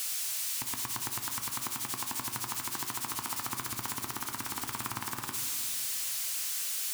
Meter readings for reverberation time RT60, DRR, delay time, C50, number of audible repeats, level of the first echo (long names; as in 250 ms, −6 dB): 2.4 s, 4.5 dB, no echo audible, 6.5 dB, no echo audible, no echo audible